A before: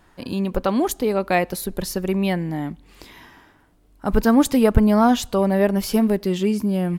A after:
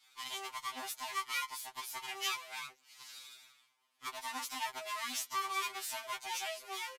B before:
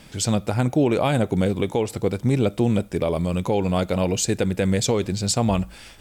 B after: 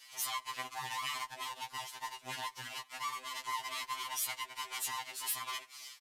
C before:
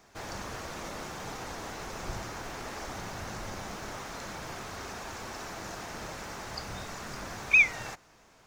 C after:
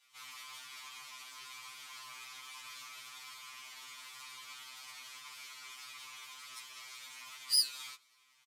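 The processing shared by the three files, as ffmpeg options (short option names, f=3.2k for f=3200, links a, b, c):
-filter_complex "[0:a]adynamicequalizer=threshold=0.0158:dfrequency=670:dqfactor=2.8:tfrequency=670:tqfactor=2.8:attack=5:release=100:ratio=0.375:range=3:mode=cutabove:tftype=bell,asplit=3[a][b][c];[a]bandpass=f=530:t=q:w=8,volume=0dB[d];[b]bandpass=f=1.84k:t=q:w=8,volume=-6dB[e];[c]bandpass=f=2.48k:t=q:w=8,volume=-9dB[f];[d][e][f]amix=inputs=3:normalize=0,acontrast=79,alimiter=limit=-21.5dB:level=0:latency=1:release=186,aeval=exprs='abs(val(0))':c=same,aderivative,aresample=32000,aresample=44100,afftfilt=real='re*2.45*eq(mod(b,6),0)':imag='im*2.45*eq(mod(b,6),0)':win_size=2048:overlap=0.75,volume=14dB"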